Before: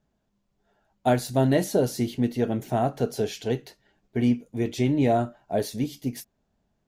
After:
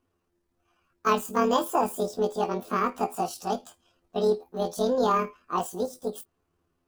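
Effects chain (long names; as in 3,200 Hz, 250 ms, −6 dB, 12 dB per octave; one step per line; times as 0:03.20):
pitch shift by two crossfaded delay taps +9.5 semitones
level −1 dB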